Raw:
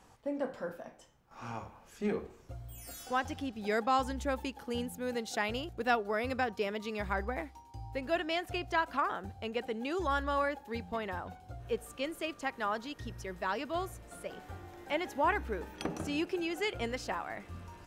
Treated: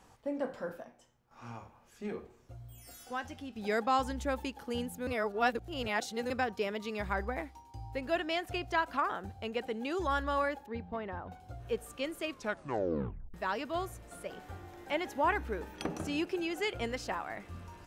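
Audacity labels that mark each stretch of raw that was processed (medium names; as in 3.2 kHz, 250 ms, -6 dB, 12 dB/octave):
0.840000	3.560000	feedback comb 120 Hz, decay 0.24 s
5.070000	6.300000	reverse
10.660000	11.320000	tape spacing loss at 10 kHz 29 dB
12.260000	12.260000	tape stop 1.08 s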